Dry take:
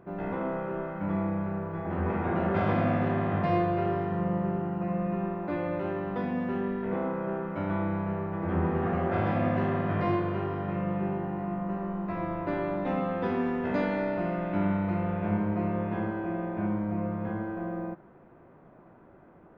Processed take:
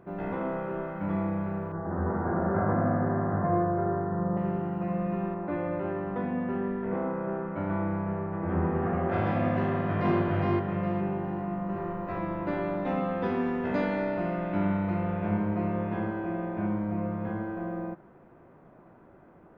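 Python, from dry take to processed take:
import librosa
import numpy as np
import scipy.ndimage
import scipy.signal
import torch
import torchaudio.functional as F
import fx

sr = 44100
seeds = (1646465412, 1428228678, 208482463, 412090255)

y = fx.steep_lowpass(x, sr, hz=1700.0, slope=48, at=(1.72, 4.37))
y = fx.lowpass(y, sr, hz=2200.0, slope=12, at=(5.34, 9.09))
y = fx.echo_throw(y, sr, start_s=9.63, length_s=0.55, ms=410, feedback_pct=30, wet_db=-1.5)
y = fx.echo_throw(y, sr, start_s=11.37, length_s=0.43, ms=380, feedback_pct=55, wet_db=-2.0)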